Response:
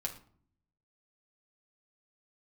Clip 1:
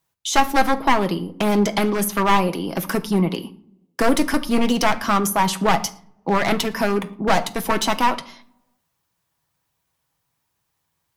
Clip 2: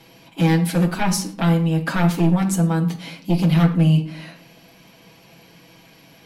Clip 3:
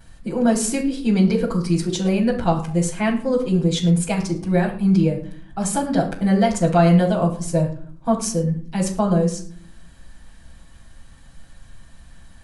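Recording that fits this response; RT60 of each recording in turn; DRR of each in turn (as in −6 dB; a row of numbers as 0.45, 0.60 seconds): 2; 0.55, 0.55, 0.55 seconds; 7.0, −1.0, −9.0 decibels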